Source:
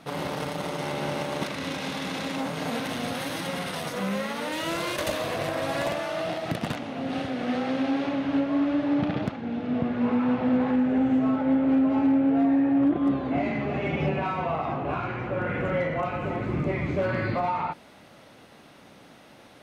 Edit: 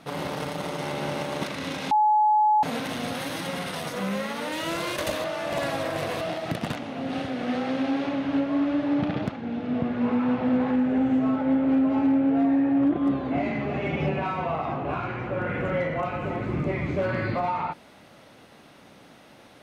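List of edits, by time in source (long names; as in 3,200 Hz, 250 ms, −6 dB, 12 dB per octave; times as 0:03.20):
0:01.91–0:02.63: beep over 851 Hz −16.5 dBFS
0:05.24–0:06.21: reverse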